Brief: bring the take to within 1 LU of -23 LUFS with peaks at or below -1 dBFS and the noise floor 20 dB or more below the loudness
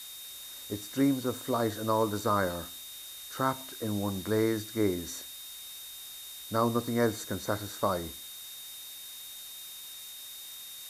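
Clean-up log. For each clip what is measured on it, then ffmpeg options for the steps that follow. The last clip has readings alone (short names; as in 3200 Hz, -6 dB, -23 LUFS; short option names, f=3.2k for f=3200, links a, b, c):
steady tone 3700 Hz; tone level -46 dBFS; noise floor -45 dBFS; noise floor target -53 dBFS; loudness -33.0 LUFS; peak -12.5 dBFS; loudness target -23.0 LUFS
-> -af "bandreject=f=3.7k:w=30"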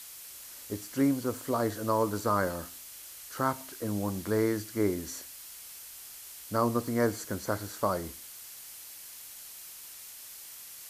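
steady tone none; noise floor -47 dBFS; noise floor target -51 dBFS
-> -af "afftdn=nr=6:nf=-47"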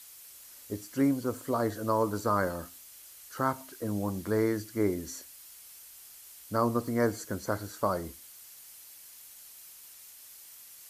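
noise floor -51 dBFS; loudness -31.0 LUFS; peak -12.5 dBFS; loudness target -23.0 LUFS
-> -af "volume=8dB"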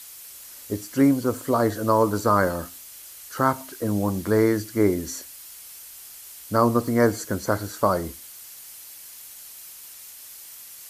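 loudness -23.0 LUFS; peak -4.5 dBFS; noise floor -43 dBFS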